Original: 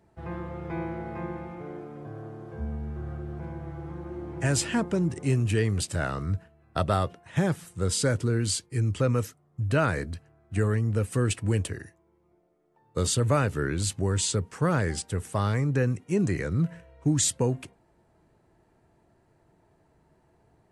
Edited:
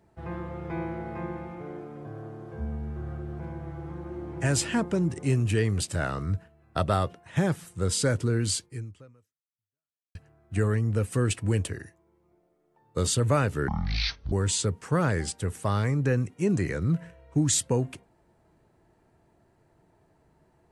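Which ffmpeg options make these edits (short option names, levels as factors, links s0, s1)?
-filter_complex "[0:a]asplit=4[s0][s1][s2][s3];[s0]atrim=end=10.15,asetpts=PTS-STARTPTS,afade=t=out:st=8.65:d=1.5:c=exp[s4];[s1]atrim=start=10.15:end=13.684,asetpts=PTS-STARTPTS,afade=t=in:d=0.004:c=hsin[s5];[s2]atrim=start=13.68:end=14.02,asetpts=PTS-STARTPTS,asetrate=23373,aresample=44100[s6];[s3]atrim=start=14.016[s7];[s4][s5]concat=n=2:v=0:a=1[s8];[s8][s6]acrossfade=d=0.004:c1=hsin:c2=hsin[s9];[s9][s7]acrossfade=d=0.004:c1=hsin:c2=hsin"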